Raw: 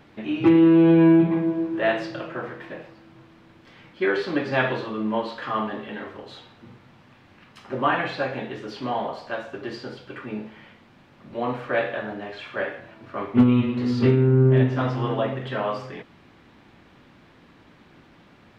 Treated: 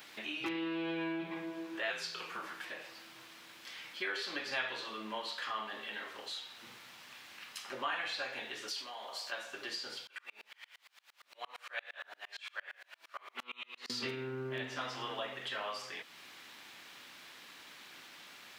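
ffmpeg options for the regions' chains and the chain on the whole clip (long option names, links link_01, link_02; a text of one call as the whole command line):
ffmpeg -i in.wav -filter_complex "[0:a]asettb=1/sr,asplit=3[link_01][link_02][link_03];[link_01]atrim=end=1.904[link_04];[link_02]atrim=start=1.9:end=2.65,asetpts=PTS-STARTPTS,afade=type=in:duration=0.004:curve=qsin,afade=type=out:start_time=0.746:duration=0.004:curve=qsin,bass=frequency=250:gain=-8,treble=frequency=4000:gain=4,afreqshift=-160[link_05];[link_03]atrim=start=2.646[link_06];[link_04][link_05]acrossfade=duration=0.004:curve1=hsin:curve2=qsin[link_07];[link_07][link_06]acrossfade=duration=0.004:curve1=qsin:curve2=hsin,asettb=1/sr,asplit=3[link_08][link_09][link_10];[link_08]atrim=end=8.684[link_11];[link_09]atrim=start=8.68:end=9.32,asetpts=PTS-STARTPTS,afade=type=in:duration=0.004:curve=qsin,afade=type=out:start_time=0.636:duration=0.004:curve=qsin,bass=frequency=250:gain=-9,treble=frequency=4000:gain=6,acompressor=threshold=-35dB:ratio=5:attack=3.2:release=140:knee=1:detection=peak[link_12];[link_10]atrim=start=9.316[link_13];[link_11][link_12]acrossfade=duration=0.004:curve1=hsin:curve2=qsin[link_14];[link_14][link_13]acrossfade=duration=0.004:curve1=qsin:curve2=hsin,asettb=1/sr,asplit=3[link_15][link_16][link_17];[link_15]atrim=end=10.074[link_18];[link_16]atrim=start=10.07:end=13.9,asetpts=PTS-STARTPTS,afade=type=in:duration=0.004:curve=qsin,afade=type=out:start_time=3.826:duration=0.004:curve=qsin,highpass=730,aeval=exprs='val(0)*pow(10,-34*if(lt(mod(-8.7*n/s,1),2*abs(-8.7)/1000),1-mod(-8.7*n/s,1)/(2*abs(-8.7)/1000),(mod(-8.7*n/s,1)-2*abs(-8.7)/1000)/(1-2*abs(-8.7)/1000))/20)':channel_layout=same[link_19];[link_17]atrim=start=13.896[link_20];[link_18][link_19]acrossfade=duration=0.004:curve1=hsin:curve2=qsin[link_21];[link_21][link_20]acrossfade=duration=0.004:curve1=qsin:curve2=hsin,aderivative,acompressor=threshold=-60dB:ratio=2,volume=15dB" out.wav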